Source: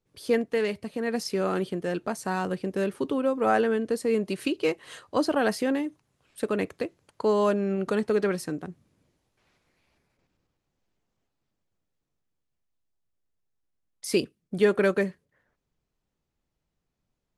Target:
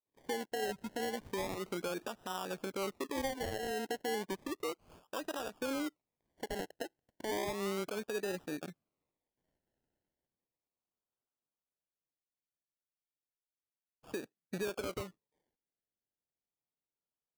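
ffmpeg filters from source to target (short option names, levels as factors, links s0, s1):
-filter_complex "[0:a]asettb=1/sr,asplit=3[s0][s1][s2];[s0]atrim=end=0.594[s3];[s1]atrim=start=0.59:end=2.68,asetpts=PTS-STARTPTS,afade=t=in:d=0.004:c=qsin,afade=t=out:st=2.086:d=0.004:c=qsin,aeval=exprs='val(0)+0.5*0.00891*sgn(val(0))':c=same[s4];[s2]atrim=start=2.676[s5];[s3][s4]acrossfade=d=0.004:c1=hsin:c2=qsin[s6];[s6][s5]acrossfade=d=0.004:c1=qsin:c2=hsin,lowpass=7300,afwtdn=0.0355,highpass=f=980:p=1,acompressor=threshold=0.0141:ratio=4,alimiter=level_in=3.35:limit=0.0631:level=0:latency=1:release=134,volume=0.299,adynamicsmooth=sensitivity=8:basefreq=4200,acrusher=samples=29:mix=1:aa=0.000001:lfo=1:lforange=17.4:lforate=0.33,volume=2"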